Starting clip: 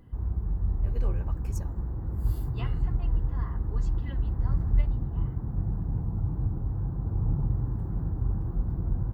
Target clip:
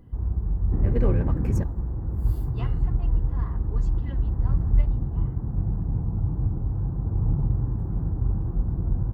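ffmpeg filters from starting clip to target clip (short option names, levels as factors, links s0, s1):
-filter_complex "[0:a]asettb=1/sr,asplit=3[s0][s1][s2];[s0]atrim=end=0.724[s3];[s1]atrim=start=0.72:end=1.64,asetpts=PTS-STARTPTS,afade=t=in:d=0.004:c=qsin,afade=t=out:st=0.916:d=0.004:c=qsin,equalizer=f=125:t=o:w=1:g=6,equalizer=f=250:t=o:w=1:g=11,equalizer=f=500:t=o:w=1:g=7,equalizer=f=2000:t=o:w=1:g=12[s4];[s2]atrim=start=1.636[s5];[s3][s4]acrossfade=d=0.004:c1=hsin:c2=qsin[s6];[s6][s5]acrossfade=d=0.004:c1=qsin:c2=hsin,asplit=2[s7][s8];[s8]adynamicsmooth=sensitivity=5:basefreq=1100,volume=0.794[s9];[s7][s9]amix=inputs=2:normalize=0,volume=0.841"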